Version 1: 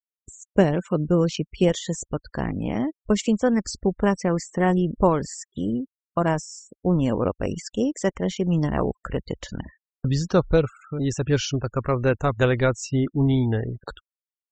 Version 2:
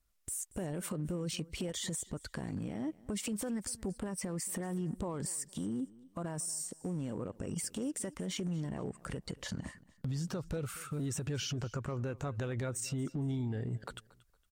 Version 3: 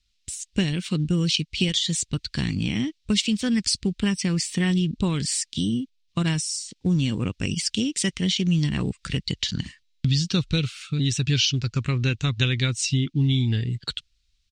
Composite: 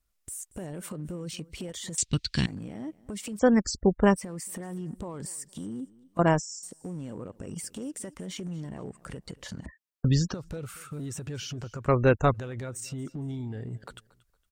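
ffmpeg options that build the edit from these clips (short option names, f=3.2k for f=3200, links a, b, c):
-filter_complex "[0:a]asplit=4[a][b][c][d];[1:a]asplit=6[e][f][g][h][i][j];[e]atrim=end=1.982[k];[2:a]atrim=start=1.978:end=2.462[l];[f]atrim=start=2.458:end=3.392[m];[a]atrim=start=3.388:end=4.162[n];[g]atrim=start=4.158:end=6.192[o];[b]atrim=start=6.188:end=6.632[p];[h]atrim=start=6.628:end=9.662[q];[c]atrim=start=9.658:end=10.342[r];[i]atrim=start=10.338:end=11.882[s];[d]atrim=start=11.878:end=12.342[t];[j]atrim=start=12.338[u];[k][l]acrossfade=d=0.004:c1=hsin:c2=hsin[v];[v][m]acrossfade=d=0.004:c1=hsin:c2=hsin[w];[w][n]acrossfade=d=0.004:c1=hsin:c2=hsin[x];[x][o]acrossfade=d=0.004:c1=hsin:c2=hsin[y];[y][p]acrossfade=d=0.004:c1=hsin:c2=hsin[z];[z][q]acrossfade=d=0.004:c1=hsin:c2=hsin[aa];[aa][r]acrossfade=d=0.004:c1=hsin:c2=hsin[ab];[ab][s]acrossfade=d=0.004:c1=hsin:c2=hsin[ac];[ac][t]acrossfade=d=0.004:c1=hsin:c2=hsin[ad];[ad][u]acrossfade=d=0.004:c1=hsin:c2=hsin"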